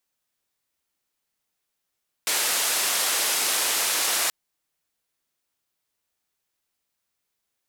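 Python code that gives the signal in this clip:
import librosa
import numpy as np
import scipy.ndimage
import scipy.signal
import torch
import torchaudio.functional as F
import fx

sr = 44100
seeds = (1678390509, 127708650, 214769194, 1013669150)

y = fx.band_noise(sr, seeds[0], length_s=2.03, low_hz=420.0, high_hz=12000.0, level_db=-24.0)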